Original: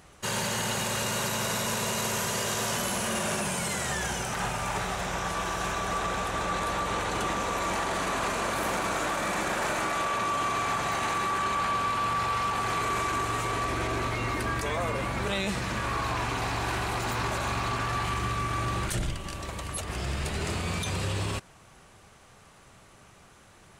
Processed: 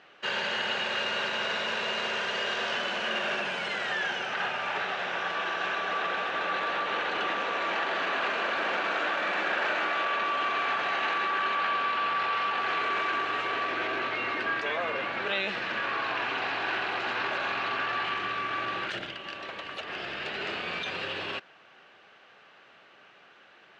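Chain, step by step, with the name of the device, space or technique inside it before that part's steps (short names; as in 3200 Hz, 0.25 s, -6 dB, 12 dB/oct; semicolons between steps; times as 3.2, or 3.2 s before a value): phone earpiece (speaker cabinet 370–4100 Hz, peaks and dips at 1000 Hz -4 dB, 1600 Hz +6 dB, 2800 Hz +6 dB)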